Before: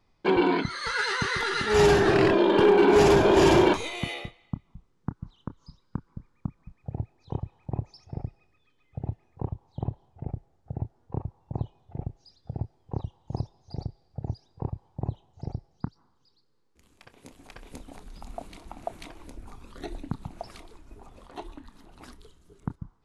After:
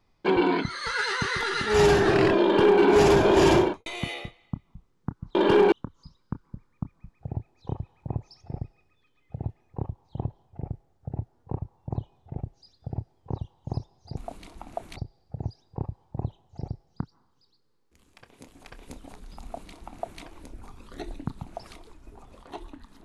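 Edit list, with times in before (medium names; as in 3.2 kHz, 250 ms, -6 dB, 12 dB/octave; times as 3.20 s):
2.44–2.81 s: copy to 5.35 s
3.52–3.86 s: studio fade out
18.27–19.06 s: copy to 13.80 s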